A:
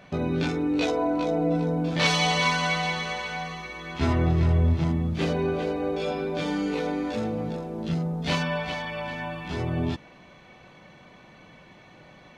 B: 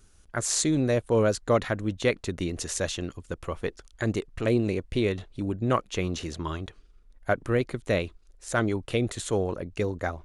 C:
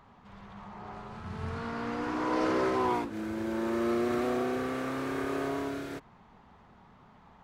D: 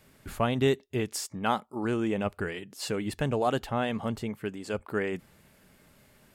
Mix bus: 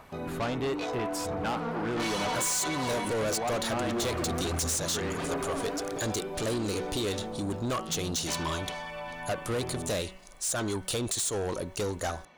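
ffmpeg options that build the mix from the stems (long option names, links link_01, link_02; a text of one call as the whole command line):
ffmpeg -i stem1.wav -i stem2.wav -i stem3.wav -i stem4.wav -filter_complex "[0:a]highshelf=frequency=5100:gain=11,volume=-11.5dB[link_01];[1:a]aexciter=amount=7.5:drive=6.5:freq=3400,adelay=2000,volume=-1dB[link_02];[2:a]aphaser=in_gain=1:out_gain=1:delay=4.3:decay=0.71:speed=1.5:type=sinusoidal,volume=-7.5dB[link_03];[3:a]volume=-2dB[link_04];[link_02][link_03][link_04]amix=inputs=3:normalize=0,bandreject=frequency=188.2:width_type=h:width=4,bandreject=frequency=376.4:width_type=h:width=4,bandreject=frequency=564.6:width_type=h:width=4,bandreject=frequency=752.8:width_type=h:width=4,bandreject=frequency=941:width_type=h:width=4,bandreject=frequency=1129.2:width_type=h:width=4,bandreject=frequency=1317.4:width_type=h:width=4,bandreject=frequency=1505.6:width_type=h:width=4,bandreject=frequency=1693.8:width_type=h:width=4,bandreject=frequency=1882:width_type=h:width=4,bandreject=frequency=2070.2:width_type=h:width=4,bandreject=frequency=2258.4:width_type=h:width=4,bandreject=frequency=2446.6:width_type=h:width=4,bandreject=frequency=2634.8:width_type=h:width=4,bandreject=frequency=2823:width_type=h:width=4,bandreject=frequency=3011.2:width_type=h:width=4,bandreject=frequency=3199.4:width_type=h:width=4,acompressor=threshold=-23dB:ratio=3,volume=0dB[link_05];[link_01][link_05]amix=inputs=2:normalize=0,equalizer=frequency=900:width=0.57:gain=7.5,asoftclip=type=tanh:threshold=-26.5dB" out.wav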